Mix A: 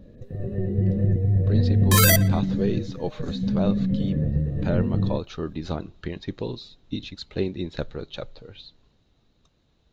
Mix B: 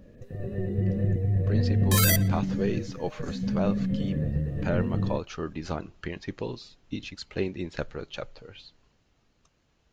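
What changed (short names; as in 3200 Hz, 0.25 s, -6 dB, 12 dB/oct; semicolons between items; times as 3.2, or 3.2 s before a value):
speech: add bell 3800 Hz -14 dB 0.3 oct; second sound -9.0 dB; master: add tilt shelf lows -4.5 dB, about 840 Hz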